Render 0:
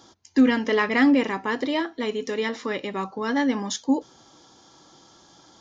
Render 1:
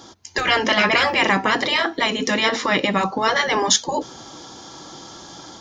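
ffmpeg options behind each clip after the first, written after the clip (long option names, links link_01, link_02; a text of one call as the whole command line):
ffmpeg -i in.wav -af "dynaudnorm=framelen=150:gausssize=3:maxgain=5dB,afftfilt=real='re*lt(hypot(re,im),0.398)':imag='im*lt(hypot(re,im),0.398)':win_size=1024:overlap=0.75,volume=9dB" out.wav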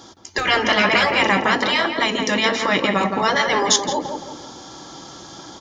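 ffmpeg -i in.wav -filter_complex "[0:a]asplit=2[link_01][link_02];[link_02]adelay=168,lowpass=frequency=1900:poles=1,volume=-5dB,asplit=2[link_03][link_04];[link_04]adelay=168,lowpass=frequency=1900:poles=1,volume=0.44,asplit=2[link_05][link_06];[link_06]adelay=168,lowpass=frequency=1900:poles=1,volume=0.44,asplit=2[link_07][link_08];[link_08]adelay=168,lowpass=frequency=1900:poles=1,volume=0.44,asplit=2[link_09][link_10];[link_10]adelay=168,lowpass=frequency=1900:poles=1,volume=0.44[link_11];[link_01][link_03][link_05][link_07][link_09][link_11]amix=inputs=6:normalize=0" out.wav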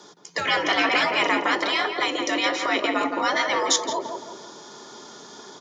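ffmpeg -i in.wav -af "afreqshift=82,volume=-4.5dB" out.wav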